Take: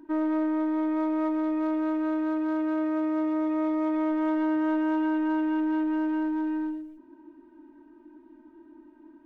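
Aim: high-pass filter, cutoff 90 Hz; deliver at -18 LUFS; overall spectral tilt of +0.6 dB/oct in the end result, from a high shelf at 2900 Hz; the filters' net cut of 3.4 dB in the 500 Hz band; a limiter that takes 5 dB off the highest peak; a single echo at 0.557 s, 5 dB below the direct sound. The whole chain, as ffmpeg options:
-af "highpass=90,equalizer=f=500:t=o:g=-5.5,highshelf=f=2.9k:g=-8,alimiter=level_in=2dB:limit=-24dB:level=0:latency=1,volume=-2dB,aecho=1:1:557:0.562,volume=13.5dB"

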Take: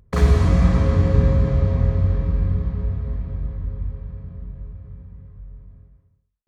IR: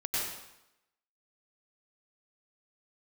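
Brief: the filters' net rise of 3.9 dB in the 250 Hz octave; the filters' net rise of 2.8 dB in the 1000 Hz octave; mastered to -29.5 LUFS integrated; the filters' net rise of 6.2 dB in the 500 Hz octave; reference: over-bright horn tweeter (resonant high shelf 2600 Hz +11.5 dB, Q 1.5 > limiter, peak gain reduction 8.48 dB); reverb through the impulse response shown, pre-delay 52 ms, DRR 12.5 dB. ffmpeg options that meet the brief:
-filter_complex "[0:a]equalizer=f=250:t=o:g=5,equalizer=f=500:t=o:g=5.5,equalizer=f=1k:t=o:g=3.5,asplit=2[a][b];[1:a]atrim=start_sample=2205,adelay=52[c];[b][c]afir=irnorm=-1:irlink=0,volume=-19dB[d];[a][d]amix=inputs=2:normalize=0,highshelf=f=2.6k:t=q:w=1.5:g=11.5,volume=-7dB,alimiter=limit=-18.5dB:level=0:latency=1"

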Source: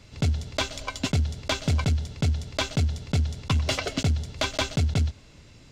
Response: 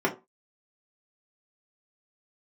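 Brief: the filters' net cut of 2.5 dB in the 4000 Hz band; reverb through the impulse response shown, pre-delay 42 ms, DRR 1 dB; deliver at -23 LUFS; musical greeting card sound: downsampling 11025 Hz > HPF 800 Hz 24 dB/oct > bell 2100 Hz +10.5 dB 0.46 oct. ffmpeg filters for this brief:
-filter_complex "[0:a]equalizer=f=4k:t=o:g=-4.5,asplit=2[a][b];[1:a]atrim=start_sample=2205,adelay=42[c];[b][c]afir=irnorm=-1:irlink=0,volume=-14dB[d];[a][d]amix=inputs=2:normalize=0,aresample=11025,aresample=44100,highpass=f=800:w=0.5412,highpass=f=800:w=1.3066,equalizer=f=2.1k:t=o:w=0.46:g=10.5,volume=7dB"

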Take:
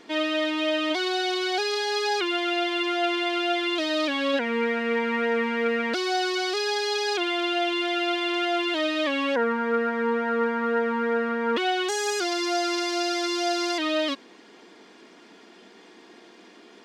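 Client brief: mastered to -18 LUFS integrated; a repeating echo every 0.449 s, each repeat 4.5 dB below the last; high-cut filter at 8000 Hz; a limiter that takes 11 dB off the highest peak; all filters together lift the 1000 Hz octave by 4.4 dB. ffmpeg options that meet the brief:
-af "lowpass=8k,equalizer=f=1k:t=o:g=6.5,alimiter=limit=-22dB:level=0:latency=1,aecho=1:1:449|898|1347|1796|2245|2694|3143|3592|4041:0.596|0.357|0.214|0.129|0.0772|0.0463|0.0278|0.0167|0.01,volume=9.5dB"

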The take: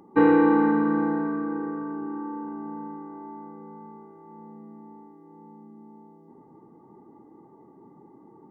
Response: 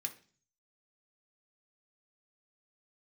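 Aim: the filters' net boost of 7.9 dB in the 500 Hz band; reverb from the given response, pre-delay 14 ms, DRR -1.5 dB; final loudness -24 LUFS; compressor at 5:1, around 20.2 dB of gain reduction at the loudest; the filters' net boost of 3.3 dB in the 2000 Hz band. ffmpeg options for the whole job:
-filter_complex "[0:a]equalizer=f=500:t=o:g=8.5,equalizer=f=2k:t=o:g=4,acompressor=threshold=-33dB:ratio=5,asplit=2[a][b];[1:a]atrim=start_sample=2205,adelay=14[c];[b][c]afir=irnorm=-1:irlink=0,volume=2.5dB[d];[a][d]amix=inputs=2:normalize=0,volume=12dB"

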